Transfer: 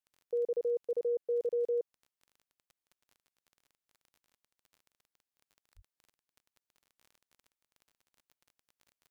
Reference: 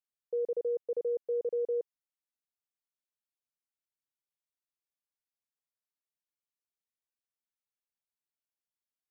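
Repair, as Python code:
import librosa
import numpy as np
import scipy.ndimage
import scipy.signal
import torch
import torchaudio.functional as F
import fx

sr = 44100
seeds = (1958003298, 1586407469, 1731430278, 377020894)

y = fx.fix_declick_ar(x, sr, threshold=6.5)
y = fx.highpass(y, sr, hz=140.0, slope=24, at=(5.75, 5.87), fade=0.02)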